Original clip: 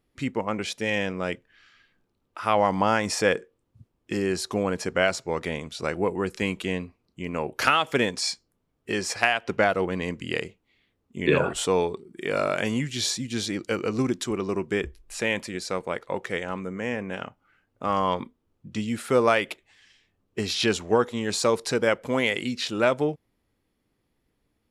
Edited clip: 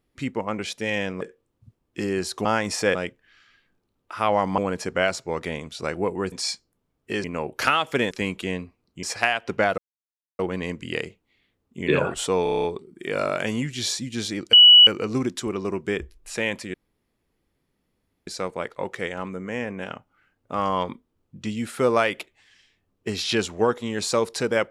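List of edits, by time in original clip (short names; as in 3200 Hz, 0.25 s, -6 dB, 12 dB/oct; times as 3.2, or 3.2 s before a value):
1.21–2.84 swap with 3.34–4.58
6.32–7.24 swap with 8.11–9.03
9.78 insert silence 0.61 s
11.82 stutter 0.03 s, 8 plays
13.71 add tone 2940 Hz -7 dBFS 0.34 s
15.58 insert room tone 1.53 s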